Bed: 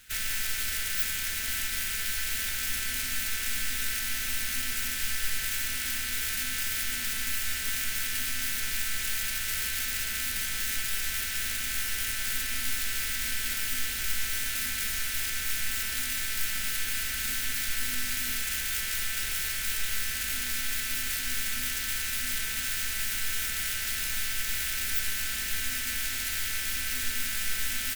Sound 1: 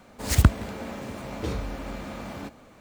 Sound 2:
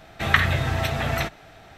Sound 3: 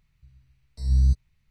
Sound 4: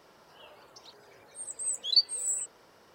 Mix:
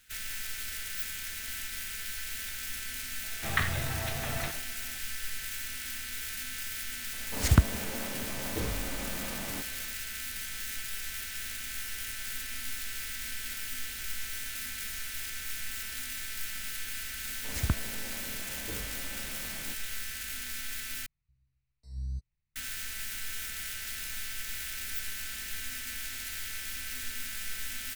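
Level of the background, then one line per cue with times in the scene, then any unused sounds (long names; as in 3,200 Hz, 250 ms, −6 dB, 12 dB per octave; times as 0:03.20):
bed −7 dB
0:03.23: mix in 2 −11 dB + level that may fall only so fast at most 120 dB per second
0:07.13: mix in 1 −4 dB
0:17.25: mix in 1 −12 dB
0:21.06: overwrite with 3 −17 dB + notch filter 3,300 Hz
not used: 4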